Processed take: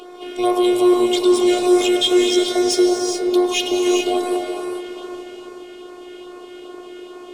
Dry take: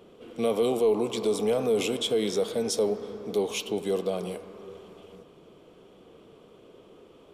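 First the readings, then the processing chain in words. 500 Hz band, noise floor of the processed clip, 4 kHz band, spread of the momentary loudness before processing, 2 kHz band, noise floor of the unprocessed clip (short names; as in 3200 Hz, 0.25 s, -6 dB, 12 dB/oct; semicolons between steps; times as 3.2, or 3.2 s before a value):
+8.5 dB, -38 dBFS, +13.0 dB, 17 LU, +12.5 dB, -54 dBFS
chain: HPF 88 Hz; notches 50/100/150/200 Hz; in parallel at +2 dB: compressor, threshold -39 dBFS, peak gain reduction 18 dB; on the sum: robotiser 359 Hz; overdrive pedal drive 13 dB, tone 4800 Hz, clips at -10 dBFS; LFO notch sine 2.4 Hz 960–3100 Hz; on a send: reverse echo 0.236 s -24 dB; on the sum: non-linear reverb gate 0.45 s rising, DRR 1.5 dB; gain +7 dB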